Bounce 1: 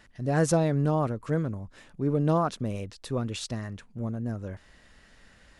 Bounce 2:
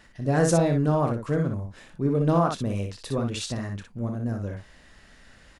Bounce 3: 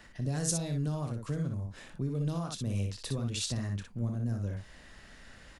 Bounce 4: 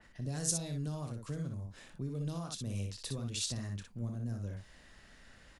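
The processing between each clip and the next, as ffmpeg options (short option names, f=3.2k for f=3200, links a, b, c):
-filter_complex "[0:a]asplit=2[a][b];[b]asoftclip=type=tanh:threshold=-21dB,volume=-10.5dB[c];[a][c]amix=inputs=2:normalize=0,aecho=1:1:29|60:0.299|0.531"
-filter_complex "[0:a]acrossover=split=3000[a][b];[a]alimiter=limit=-19.5dB:level=0:latency=1:release=415[c];[c][b]amix=inputs=2:normalize=0,acrossover=split=190|3000[d][e][f];[e]acompressor=threshold=-47dB:ratio=2[g];[d][g][f]amix=inputs=3:normalize=0"
-af "adynamicequalizer=threshold=0.00224:dfrequency=3100:dqfactor=0.7:tfrequency=3100:tqfactor=0.7:attack=5:release=100:ratio=0.375:range=2.5:mode=boostabove:tftype=highshelf,volume=-5.5dB"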